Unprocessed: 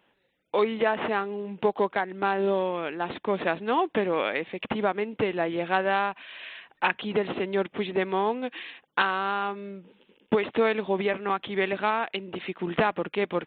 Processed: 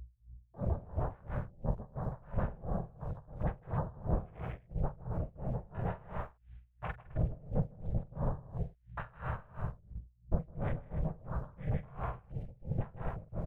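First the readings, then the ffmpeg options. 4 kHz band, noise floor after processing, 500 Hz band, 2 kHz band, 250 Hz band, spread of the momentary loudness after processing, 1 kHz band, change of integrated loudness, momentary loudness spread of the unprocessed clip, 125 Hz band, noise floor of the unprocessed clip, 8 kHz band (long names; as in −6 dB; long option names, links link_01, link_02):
below −30 dB, −65 dBFS, −18.0 dB, −23.0 dB, −11.0 dB, 8 LU, −17.5 dB, −12.5 dB, 8 LU, +5.0 dB, −70 dBFS, can't be measured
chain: -filter_complex "[0:a]afftfilt=real='hypot(re,im)*cos(2*PI*random(0))':imag='hypot(re,im)*sin(2*PI*random(1))':win_size=512:overlap=0.75,aeval=exprs='val(0)*sin(2*PI*160*n/s)':channel_layout=same,aeval=exprs='val(0)+0.00282*(sin(2*PI*60*n/s)+sin(2*PI*2*60*n/s)/2+sin(2*PI*3*60*n/s)/3+sin(2*PI*4*60*n/s)/4+sin(2*PI*5*60*n/s)/5)':channel_layout=same,aresample=11025,aresample=44100,afwtdn=0.0141,aecho=1:1:43.73|157.4|207|262.4:0.355|0.891|0.447|0.447,asplit=2[link_01][link_02];[link_02]acrusher=bits=7:mix=0:aa=0.000001,volume=-11dB[link_03];[link_01][link_03]amix=inputs=2:normalize=0,firequalizer=gain_entry='entry(140,0);entry(270,-25);entry(450,-17);entry(2800,-27)':delay=0.05:min_phase=1,aeval=exprs='val(0)*pow(10,-24*(0.5-0.5*cos(2*PI*2.9*n/s))/20)':channel_layout=same,volume=11dB"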